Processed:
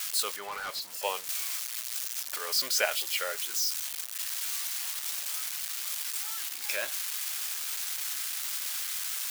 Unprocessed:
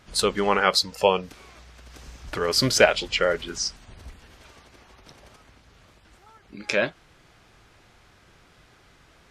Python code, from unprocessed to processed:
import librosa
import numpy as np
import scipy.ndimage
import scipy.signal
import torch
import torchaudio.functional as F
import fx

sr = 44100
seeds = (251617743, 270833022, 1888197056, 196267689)

y = x + 0.5 * 10.0 ** (-15.0 / 20.0) * np.diff(np.sign(x), prepend=np.sign(x[:1]))
y = scipy.signal.sosfilt(scipy.signal.butter(2, 750.0, 'highpass', fs=sr, output='sos'), y)
y = fx.overload_stage(y, sr, gain_db=24.0, at=(0.36, 1.03))
y = F.gain(torch.from_numpy(y), -8.5).numpy()